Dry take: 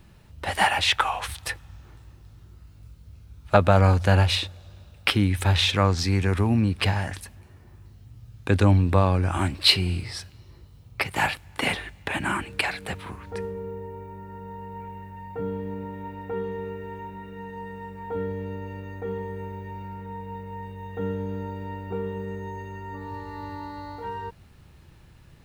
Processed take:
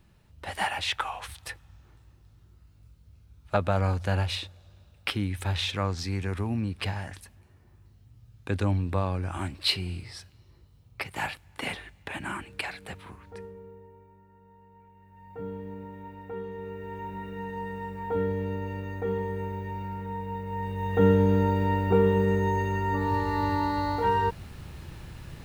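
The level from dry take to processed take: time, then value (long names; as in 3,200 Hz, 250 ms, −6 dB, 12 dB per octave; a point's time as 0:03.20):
0:13.13 −8 dB
0:14.33 −17.5 dB
0:14.94 −17.5 dB
0:15.42 −6.5 dB
0:16.52 −6.5 dB
0:17.17 +2 dB
0:20.42 +2 dB
0:21.01 +9.5 dB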